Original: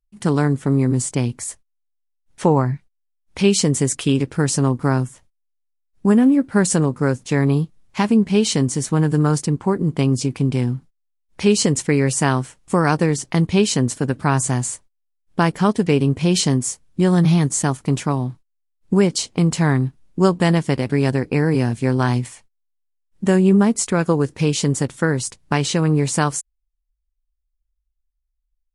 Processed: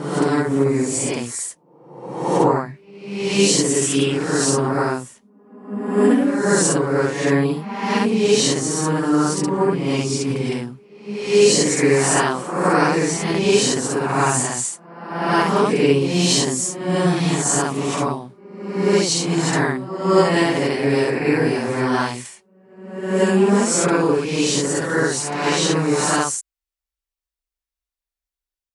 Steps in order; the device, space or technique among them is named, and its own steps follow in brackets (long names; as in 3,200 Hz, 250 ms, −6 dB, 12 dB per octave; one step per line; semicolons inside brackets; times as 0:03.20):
ghost voice (reversed playback; convolution reverb RT60 1.0 s, pre-delay 40 ms, DRR −6 dB; reversed playback; high-pass filter 500 Hz 6 dB per octave)
level −2.5 dB